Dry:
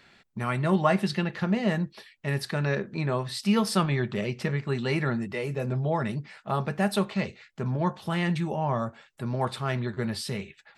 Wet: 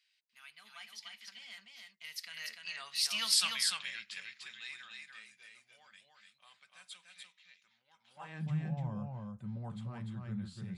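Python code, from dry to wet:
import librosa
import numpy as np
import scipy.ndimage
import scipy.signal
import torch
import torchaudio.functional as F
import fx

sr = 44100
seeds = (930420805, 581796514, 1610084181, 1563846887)

p1 = fx.doppler_pass(x, sr, speed_mps=36, closest_m=11.0, pass_at_s=3.25)
p2 = fx.low_shelf_res(p1, sr, hz=260.0, db=6.5, q=3.0)
p3 = 10.0 ** (-15.0 / 20.0) * np.tanh(p2 / 10.0 ** (-15.0 / 20.0))
p4 = p2 + (p3 * librosa.db_to_amplitude(-3.0))
p5 = p4 + 10.0 ** (-3.5 / 20.0) * np.pad(p4, (int(295 * sr / 1000.0), 0))[:len(p4)]
y = fx.filter_sweep_highpass(p5, sr, from_hz=3000.0, to_hz=86.0, start_s=7.98, end_s=8.58, q=1.1)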